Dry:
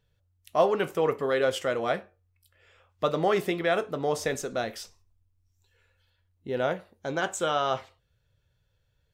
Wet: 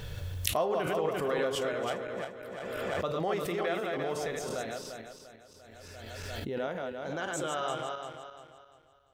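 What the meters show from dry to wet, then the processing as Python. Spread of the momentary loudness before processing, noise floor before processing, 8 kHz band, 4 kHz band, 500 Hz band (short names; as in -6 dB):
10 LU, -73 dBFS, -0.5 dB, -2.5 dB, -4.5 dB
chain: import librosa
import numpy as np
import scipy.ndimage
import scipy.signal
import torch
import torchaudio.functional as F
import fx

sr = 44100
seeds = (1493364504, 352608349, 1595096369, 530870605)

y = fx.reverse_delay_fb(x, sr, ms=173, feedback_pct=59, wet_db=-3.0)
y = fx.pre_swell(y, sr, db_per_s=22.0)
y = F.gain(torch.from_numpy(y), -8.5).numpy()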